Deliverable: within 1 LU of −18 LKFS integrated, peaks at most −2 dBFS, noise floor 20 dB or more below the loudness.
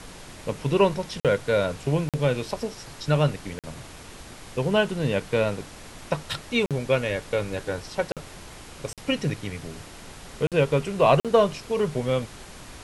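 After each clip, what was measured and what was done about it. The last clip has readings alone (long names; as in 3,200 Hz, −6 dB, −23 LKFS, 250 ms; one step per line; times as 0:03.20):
number of dropouts 8; longest dropout 47 ms; background noise floor −44 dBFS; target noise floor −46 dBFS; integrated loudness −25.5 LKFS; sample peak −6.5 dBFS; target loudness −18.0 LKFS
→ repair the gap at 0:01.20/0:02.09/0:03.59/0:06.66/0:08.12/0:08.93/0:10.47/0:11.20, 47 ms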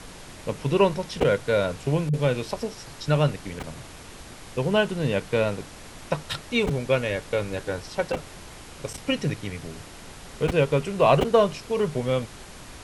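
number of dropouts 0; background noise floor −44 dBFS; target noise floor −45 dBFS
→ noise reduction from a noise print 6 dB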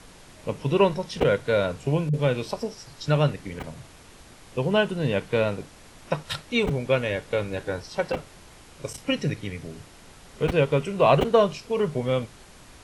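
background noise floor −50 dBFS; integrated loudness −25.0 LKFS; sample peak −6.5 dBFS; target loudness −18.0 LKFS
→ level +7 dB
brickwall limiter −2 dBFS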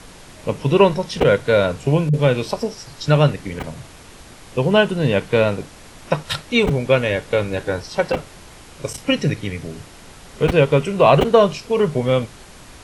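integrated loudness −18.5 LKFS; sample peak −2.0 dBFS; background noise floor −43 dBFS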